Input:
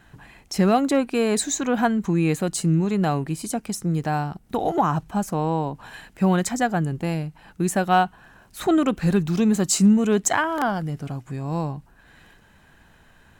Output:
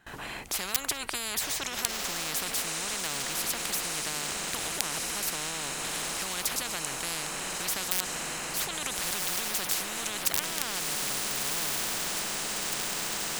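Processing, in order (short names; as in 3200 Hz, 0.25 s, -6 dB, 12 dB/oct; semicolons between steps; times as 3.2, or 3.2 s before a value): gate with hold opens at -42 dBFS; low shelf 270 Hz -9 dB; wrapped overs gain 10.5 dB; diffused feedback echo 1.414 s, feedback 66%, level -12 dB; maximiser +15.5 dB; spectral compressor 10:1; gain -1 dB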